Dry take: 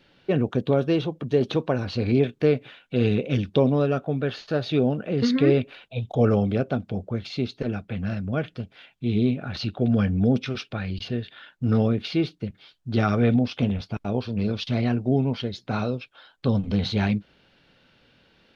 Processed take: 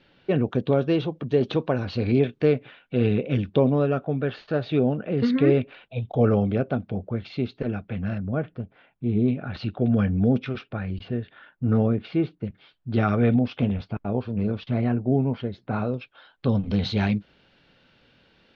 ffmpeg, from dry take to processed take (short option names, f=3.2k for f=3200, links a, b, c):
-af "asetnsamples=n=441:p=0,asendcmd='2.53 lowpass f 2800;8.18 lowpass f 1400;9.28 lowpass f 2600;10.59 lowpass f 1800;12.45 lowpass f 2800;13.93 lowpass f 1800;15.94 lowpass f 3500;16.66 lowpass f 5800',lowpass=4.3k"